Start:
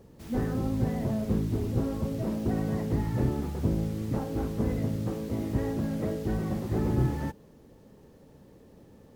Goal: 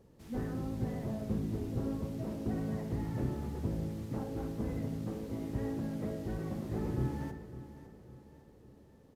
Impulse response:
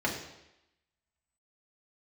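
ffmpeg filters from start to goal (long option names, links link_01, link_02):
-filter_complex "[0:a]aecho=1:1:556|1112|1668|2224:0.2|0.0918|0.0422|0.0194,asplit=2[link_01][link_02];[1:a]atrim=start_sample=2205,adelay=64[link_03];[link_02][link_03]afir=irnorm=-1:irlink=0,volume=-19.5dB[link_04];[link_01][link_04]amix=inputs=2:normalize=0,aresample=32000,aresample=44100,volume=-8dB"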